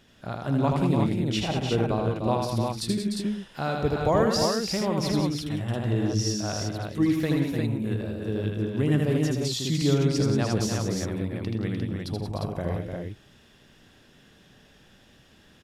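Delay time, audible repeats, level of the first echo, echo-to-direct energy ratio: 79 ms, 5, −3.5 dB, 1.0 dB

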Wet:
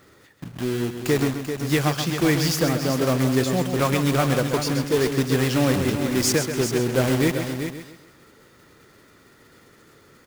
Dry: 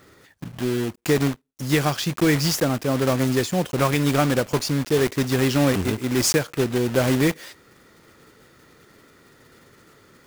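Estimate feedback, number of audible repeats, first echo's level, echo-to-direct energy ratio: repeats not evenly spaced, 5, −8.5 dB, −5.0 dB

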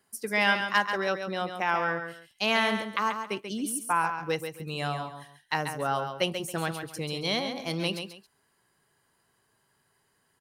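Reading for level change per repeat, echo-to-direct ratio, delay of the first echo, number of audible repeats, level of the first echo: −12.0 dB, −7.0 dB, 137 ms, 2, −7.5 dB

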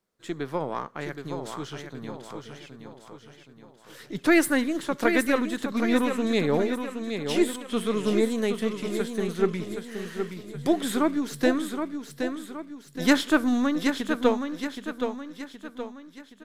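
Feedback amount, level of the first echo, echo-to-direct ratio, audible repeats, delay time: 46%, −7.0 dB, −6.0 dB, 5, 771 ms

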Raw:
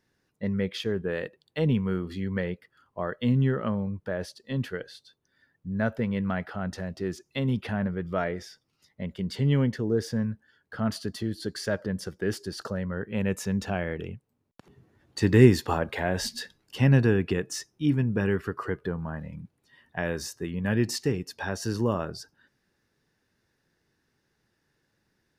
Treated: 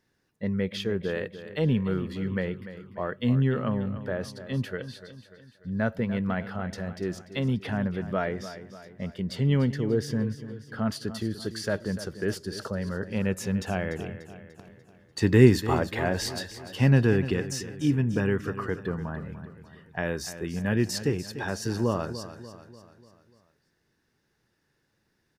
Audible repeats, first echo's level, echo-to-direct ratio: 4, −13.0 dB, −12.0 dB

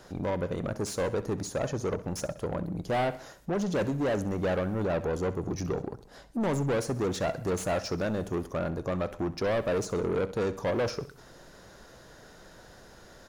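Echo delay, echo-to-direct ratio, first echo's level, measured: 65 ms, −15.0 dB, −16.0 dB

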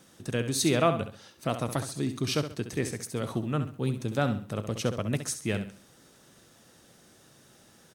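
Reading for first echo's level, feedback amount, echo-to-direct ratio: −10.0 dB, 33%, −9.5 dB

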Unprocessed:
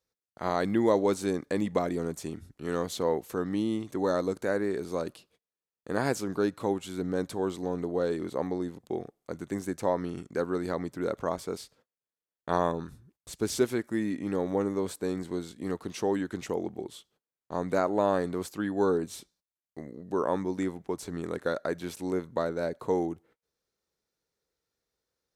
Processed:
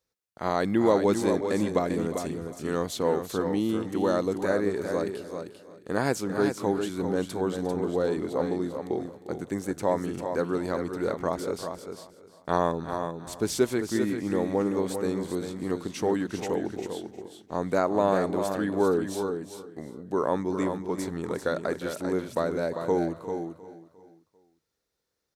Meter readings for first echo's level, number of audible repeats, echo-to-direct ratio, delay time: −15.5 dB, 6, −6.0 dB, 353 ms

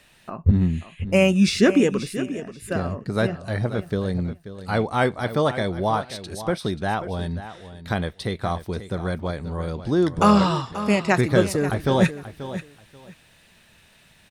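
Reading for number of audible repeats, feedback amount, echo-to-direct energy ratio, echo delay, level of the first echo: 2, 19%, −13.0 dB, 534 ms, −13.0 dB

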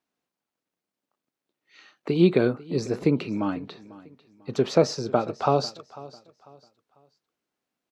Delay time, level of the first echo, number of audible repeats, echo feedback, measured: 496 ms, −19.5 dB, 2, 32%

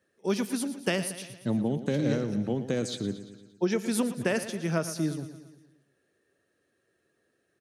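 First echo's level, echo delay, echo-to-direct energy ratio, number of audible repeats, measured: −12.5 dB, 115 ms, −11.0 dB, 5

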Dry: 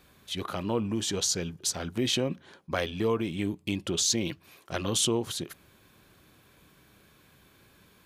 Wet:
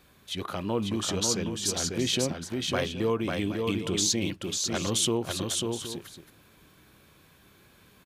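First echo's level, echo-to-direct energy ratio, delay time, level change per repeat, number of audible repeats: −4.0 dB, −3.5 dB, 546 ms, repeats not evenly spaced, 2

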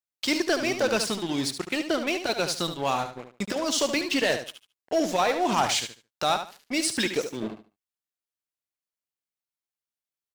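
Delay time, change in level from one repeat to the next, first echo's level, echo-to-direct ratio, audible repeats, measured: 73 ms, −13.0 dB, −9.0 dB, −9.0 dB, 2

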